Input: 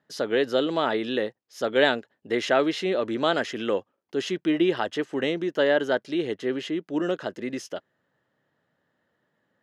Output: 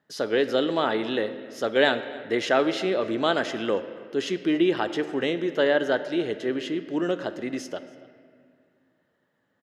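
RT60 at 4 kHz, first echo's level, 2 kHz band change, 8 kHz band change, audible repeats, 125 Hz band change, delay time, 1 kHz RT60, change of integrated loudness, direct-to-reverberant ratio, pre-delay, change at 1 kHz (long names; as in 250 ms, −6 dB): 1.4 s, −22.5 dB, +0.5 dB, 0.0 dB, 1, 0.0 dB, 281 ms, 1.9 s, +0.5 dB, 10.5 dB, 3 ms, +0.5 dB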